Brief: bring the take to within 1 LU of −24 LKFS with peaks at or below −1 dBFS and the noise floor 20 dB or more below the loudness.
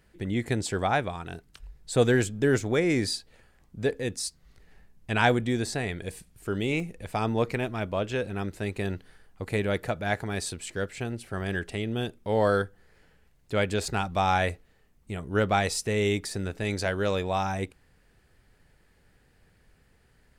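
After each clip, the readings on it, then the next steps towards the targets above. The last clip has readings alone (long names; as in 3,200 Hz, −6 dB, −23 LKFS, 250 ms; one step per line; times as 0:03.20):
number of dropouts 1; longest dropout 1.5 ms; integrated loudness −28.5 LKFS; sample peak −7.0 dBFS; target loudness −24.0 LKFS
→ repair the gap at 0:06.80, 1.5 ms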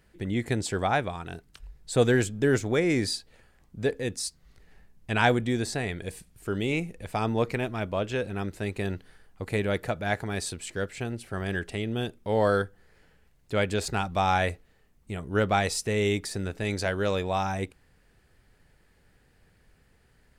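number of dropouts 0; integrated loudness −28.5 LKFS; sample peak −7.0 dBFS; target loudness −24.0 LKFS
→ level +4.5 dB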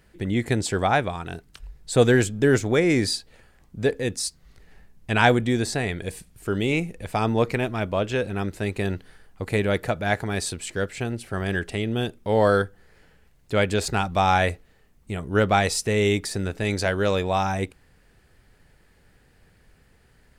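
integrated loudness −24.0 LKFS; sample peak −2.5 dBFS; background noise floor −59 dBFS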